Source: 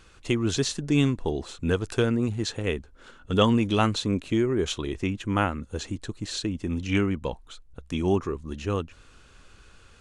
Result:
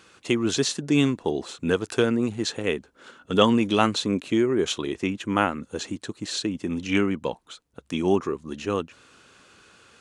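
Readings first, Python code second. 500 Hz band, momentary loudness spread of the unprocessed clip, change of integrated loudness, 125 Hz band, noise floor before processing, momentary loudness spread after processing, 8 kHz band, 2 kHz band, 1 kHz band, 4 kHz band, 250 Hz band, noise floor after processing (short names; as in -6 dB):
+3.0 dB, 11 LU, +2.0 dB, -4.5 dB, -54 dBFS, 12 LU, +3.0 dB, +3.0 dB, +3.0 dB, +3.0 dB, +2.0 dB, -62 dBFS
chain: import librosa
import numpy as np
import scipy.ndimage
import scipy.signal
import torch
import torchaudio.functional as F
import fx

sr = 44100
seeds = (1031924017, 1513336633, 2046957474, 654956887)

y = scipy.signal.sosfilt(scipy.signal.butter(2, 180.0, 'highpass', fs=sr, output='sos'), x)
y = F.gain(torch.from_numpy(y), 3.0).numpy()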